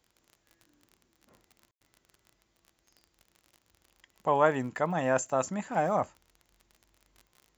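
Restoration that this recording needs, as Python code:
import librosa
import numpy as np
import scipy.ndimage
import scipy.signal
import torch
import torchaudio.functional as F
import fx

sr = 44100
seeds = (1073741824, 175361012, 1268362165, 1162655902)

y = fx.fix_declick_ar(x, sr, threshold=6.5)
y = fx.fix_ambience(y, sr, seeds[0], print_start_s=2.37, print_end_s=2.87, start_s=1.71, end_s=1.81)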